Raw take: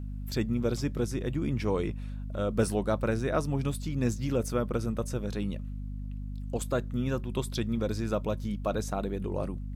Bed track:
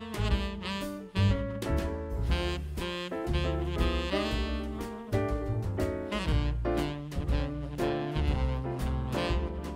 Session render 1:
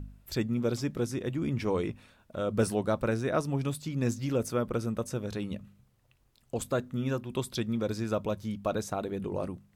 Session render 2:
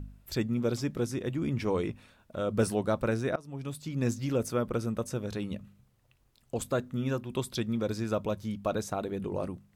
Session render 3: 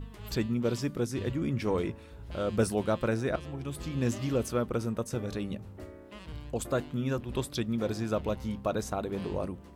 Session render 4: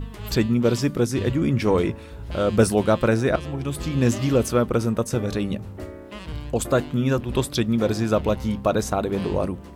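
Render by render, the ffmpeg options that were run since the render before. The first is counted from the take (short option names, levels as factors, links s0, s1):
-af "bandreject=f=50:t=h:w=4,bandreject=f=100:t=h:w=4,bandreject=f=150:t=h:w=4,bandreject=f=200:t=h:w=4,bandreject=f=250:t=h:w=4"
-filter_complex "[0:a]asplit=2[s0][s1];[s0]atrim=end=3.36,asetpts=PTS-STARTPTS,afade=t=out:st=3.356:d=0.004:c=hsin:silence=0.0668344[s2];[s1]atrim=start=3.36,asetpts=PTS-STARTPTS,afade=t=in:d=0.65:silence=0.0668344[s3];[s2][s3]concat=n=2:v=0:a=1"
-filter_complex "[1:a]volume=0.188[s0];[0:a][s0]amix=inputs=2:normalize=0"
-af "volume=2.99"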